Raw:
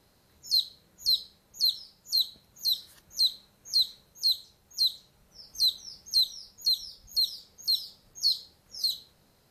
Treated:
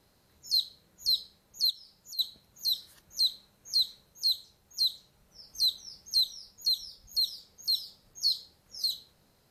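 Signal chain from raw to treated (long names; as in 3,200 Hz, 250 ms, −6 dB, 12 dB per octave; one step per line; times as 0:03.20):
0:01.70–0:02.19: downward compressor 5 to 1, threshold −43 dBFS, peak gain reduction 19 dB
level −2 dB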